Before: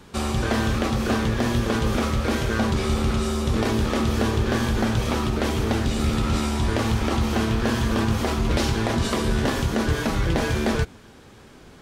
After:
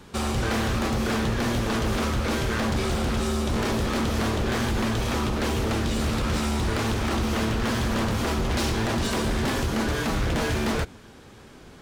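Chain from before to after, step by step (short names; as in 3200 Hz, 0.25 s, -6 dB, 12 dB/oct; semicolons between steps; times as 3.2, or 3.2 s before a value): wavefolder -19.5 dBFS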